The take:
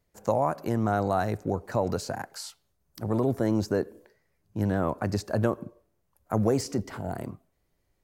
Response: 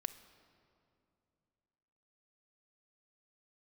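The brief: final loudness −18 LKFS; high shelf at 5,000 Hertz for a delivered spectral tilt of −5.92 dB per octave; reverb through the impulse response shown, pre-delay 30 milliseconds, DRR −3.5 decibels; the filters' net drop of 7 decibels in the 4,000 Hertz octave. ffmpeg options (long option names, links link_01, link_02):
-filter_complex "[0:a]equalizer=frequency=4000:width_type=o:gain=-4,highshelf=frequency=5000:gain=-8.5,asplit=2[link_01][link_02];[1:a]atrim=start_sample=2205,adelay=30[link_03];[link_02][link_03]afir=irnorm=-1:irlink=0,volume=5dB[link_04];[link_01][link_04]amix=inputs=2:normalize=0,volume=6dB"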